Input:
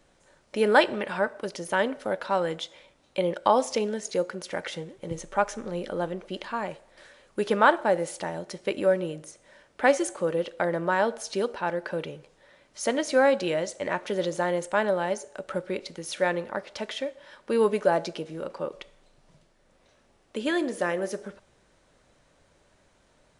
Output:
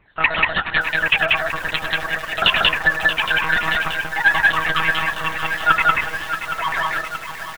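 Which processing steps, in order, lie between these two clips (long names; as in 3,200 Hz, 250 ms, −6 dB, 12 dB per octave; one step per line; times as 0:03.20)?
rippled gain that drifts along the octave scale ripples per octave 0.76, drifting −1.4 Hz, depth 16 dB
parametric band 670 Hz −3.5 dB 0.26 octaves
mains-hum notches 50/100/150/200/250/300/350/400/450 Hz
change of speed 3.09×
one-pitch LPC vocoder at 8 kHz 160 Hz
loudspeakers that aren't time-aligned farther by 35 metres −11 dB, 64 metres −1 dB
feedback echo at a low word length 629 ms, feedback 80%, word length 6 bits, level −10 dB
level +3 dB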